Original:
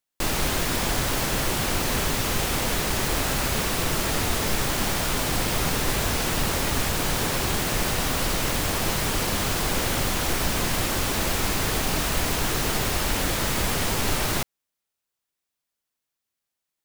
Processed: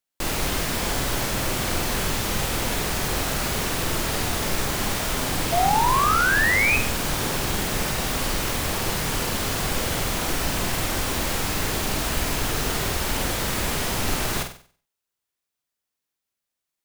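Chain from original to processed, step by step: painted sound rise, 5.52–6.77 s, 670–2600 Hz -20 dBFS; on a send: flutter echo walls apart 8.1 m, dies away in 0.44 s; on the sum: trim -1.5 dB

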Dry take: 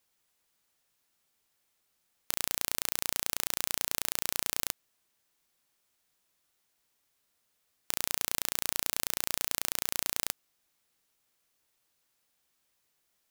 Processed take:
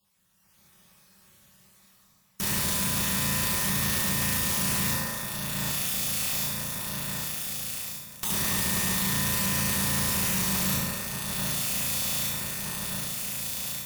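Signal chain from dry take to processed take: random holes in the spectrogram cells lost 28%; echo whose repeats swap between lows and highs 733 ms, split 2.2 kHz, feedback 72%, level -10.5 dB; waveshaping leveller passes 1; resonant low shelf 270 Hz +7.5 dB, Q 3; speed mistake 25 fps video run at 24 fps; level rider gain up to 12 dB; reverberation RT60 1.6 s, pre-delay 3 ms, DRR -6.5 dB; valve stage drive 26 dB, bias 0.35; trim +4 dB

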